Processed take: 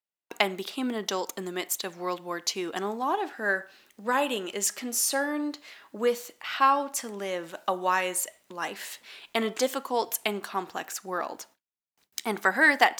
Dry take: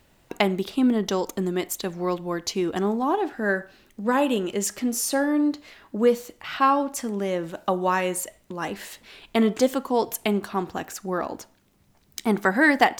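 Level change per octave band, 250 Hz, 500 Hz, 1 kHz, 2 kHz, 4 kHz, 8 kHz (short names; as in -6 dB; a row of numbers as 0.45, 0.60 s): -10.5, -5.5, -2.0, 0.0, +0.5, +1.0 dB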